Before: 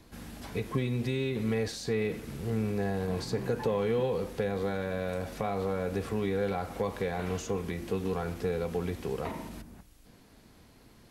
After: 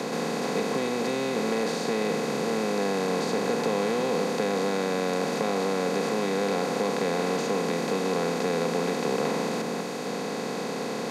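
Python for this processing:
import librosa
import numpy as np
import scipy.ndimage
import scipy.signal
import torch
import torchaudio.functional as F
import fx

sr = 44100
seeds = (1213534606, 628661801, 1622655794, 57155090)

y = fx.bin_compress(x, sr, power=0.2)
y = scipy.signal.sosfilt(scipy.signal.butter(8, 160.0, 'highpass', fs=sr, output='sos'), y)
y = y * 10.0 ** (-2.5 / 20.0)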